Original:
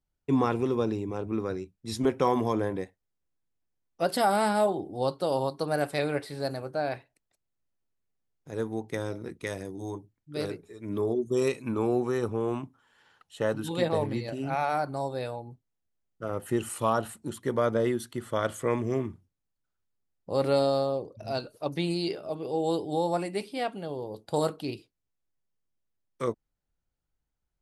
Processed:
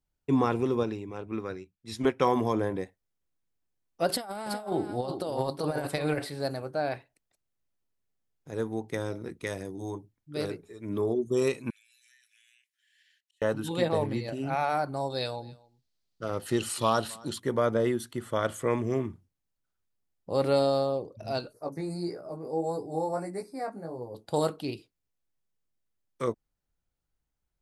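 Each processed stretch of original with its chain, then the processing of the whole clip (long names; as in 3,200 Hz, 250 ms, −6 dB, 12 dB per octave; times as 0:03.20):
0:00.83–0:02.25: parametric band 2,200 Hz +7 dB 1.8 octaves + expander for the loud parts, over −41 dBFS
0:04.09–0:06.30: compressor whose output falls as the input rises −30 dBFS, ratio −0.5 + single-tap delay 371 ms −9 dB
0:11.70–0:13.42: Butterworth high-pass 1,700 Hz 96 dB per octave + downward compressor 16 to 1, threshold −59 dBFS + volume swells 173 ms
0:15.10–0:17.40: parametric band 4,400 Hz +15 dB 0.94 octaves + single-tap delay 265 ms −24 dB
0:21.53–0:24.15: chorus effect 1.6 Hz, delay 16.5 ms, depth 3.1 ms + Butterworth band-reject 3,100 Hz, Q 0.99
whole clip: no processing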